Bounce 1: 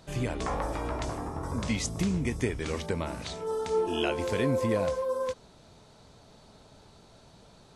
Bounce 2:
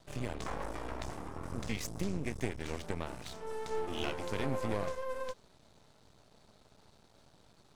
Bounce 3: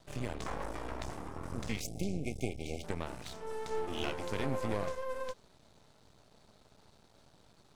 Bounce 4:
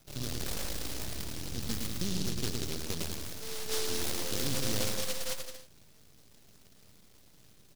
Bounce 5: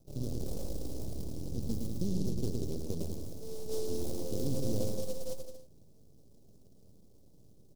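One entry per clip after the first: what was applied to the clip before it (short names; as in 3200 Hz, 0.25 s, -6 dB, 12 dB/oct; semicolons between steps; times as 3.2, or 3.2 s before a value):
half-wave rectifier; gain -4 dB
spectral delete 1.81–2.84, 830–2100 Hz
on a send: bouncing-ball echo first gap 0.11 s, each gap 0.75×, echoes 5; on the sum: noise-modulated delay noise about 4500 Hz, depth 0.35 ms
EQ curve 530 Hz 0 dB, 1800 Hz -29 dB, 5300 Hz -13 dB; gain +2 dB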